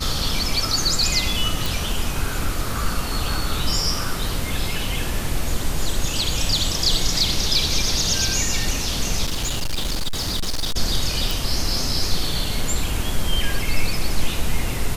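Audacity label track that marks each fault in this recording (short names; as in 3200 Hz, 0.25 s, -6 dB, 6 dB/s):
1.660000	1.660000	pop
9.250000	10.770000	clipped -19 dBFS
11.310000	11.310000	pop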